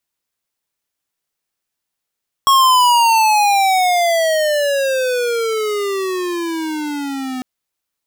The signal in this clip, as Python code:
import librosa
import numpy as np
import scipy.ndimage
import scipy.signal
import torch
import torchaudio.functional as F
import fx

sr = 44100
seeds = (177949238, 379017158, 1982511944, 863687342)

y = fx.riser_tone(sr, length_s=4.95, level_db=-10.0, wave='square', hz=1100.0, rise_st=-25.5, swell_db=-14.0)